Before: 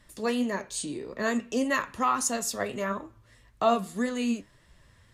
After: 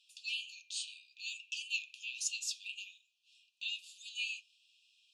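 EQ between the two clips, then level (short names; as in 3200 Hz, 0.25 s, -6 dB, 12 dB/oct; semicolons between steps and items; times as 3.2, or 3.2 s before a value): brick-wall FIR high-pass 2400 Hz; tape spacing loss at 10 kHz 25 dB; +10.0 dB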